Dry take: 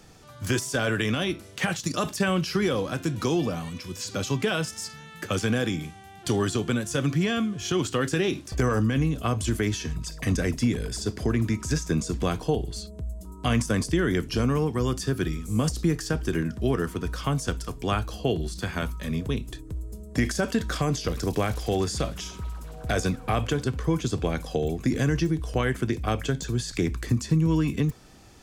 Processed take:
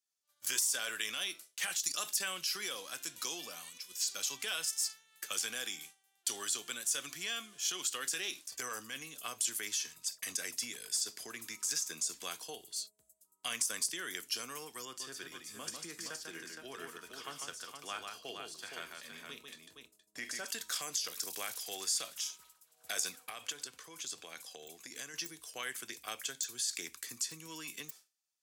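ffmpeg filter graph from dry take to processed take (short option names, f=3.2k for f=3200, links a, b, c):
-filter_complex "[0:a]asettb=1/sr,asplit=3[a][b][c];[a]atrim=end=14.854[d];[b]atrim=start=14.85:end=20.47,asetpts=PTS-STARTPTS,afade=t=in:d=0.004:c=qsin,afade=t=out:st=5.616:d=0.004:c=qsin,lowpass=f=2.2k:p=1,aecho=1:1:46|147|467:0.178|0.596|0.501,atrim=end_sample=247842[e];[c]atrim=start=20.466[f];[d][e]acrossfade=d=0.004:c1=hsin:c2=qsin[g];[g][f]acrossfade=d=0.004:c1=qsin:c2=hsin,asettb=1/sr,asplit=3[h][i][j];[h]atrim=end=23.294[k];[i]atrim=start=23.29:end=25.14,asetpts=PTS-STARTPTS,afade=t=in:d=0.004:c=qsin,afade=t=out:st=1.846:d=0.004:c=qsin,highshelf=f=12k:g=-7.5,acompressor=threshold=-25dB:ratio=4:attack=3.2:release=140:knee=1:detection=peak[l];[j]atrim=start=25.136[m];[k][l]acrossfade=d=0.004:c1=hsin:c2=qsin[n];[n][m]acrossfade=d=0.004:c1=qsin:c2=hsin,highpass=f=250:p=1,agate=range=-33dB:threshold=-36dB:ratio=3:detection=peak,aderivative,volume=2.5dB"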